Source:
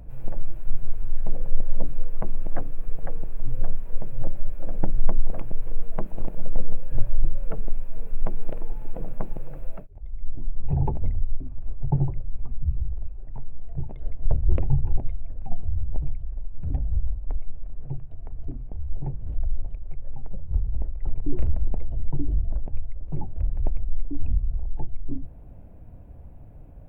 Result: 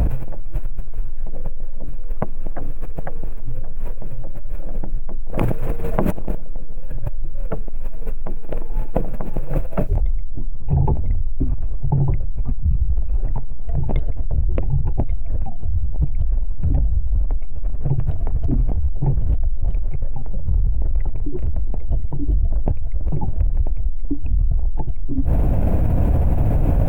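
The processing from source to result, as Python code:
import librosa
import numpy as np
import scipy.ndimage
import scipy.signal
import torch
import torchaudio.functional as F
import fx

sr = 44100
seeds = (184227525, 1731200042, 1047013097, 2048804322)

y = fx.highpass(x, sr, hz=52.0, slope=6, at=(5.36, 6.12))
y = fx.env_flatten(y, sr, amount_pct=100)
y = y * librosa.db_to_amplitude(-8.5)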